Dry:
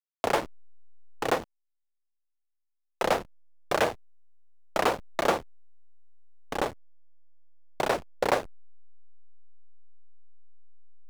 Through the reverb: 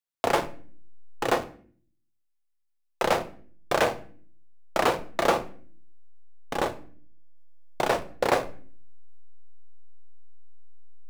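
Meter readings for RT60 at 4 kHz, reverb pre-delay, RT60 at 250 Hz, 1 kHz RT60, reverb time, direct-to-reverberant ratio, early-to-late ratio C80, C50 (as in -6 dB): 0.40 s, 6 ms, 0.75 s, 0.45 s, 0.50 s, 9.0 dB, 20.0 dB, 16.0 dB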